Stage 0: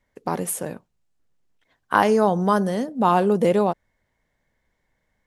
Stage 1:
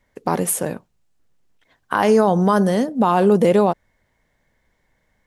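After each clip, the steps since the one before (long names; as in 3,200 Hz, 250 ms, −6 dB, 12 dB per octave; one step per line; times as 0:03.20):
brickwall limiter −12 dBFS, peak gain reduction 9.5 dB
level +6 dB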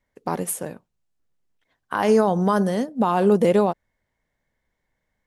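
expander for the loud parts 1.5 to 1, over −28 dBFS
level −2 dB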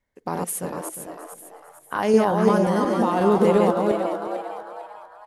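feedback delay that plays each chunk backwards 178 ms, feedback 42%, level −2.5 dB
echo with shifted repeats 450 ms, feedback 39%, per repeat +140 Hz, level −8 dB
level −2.5 dB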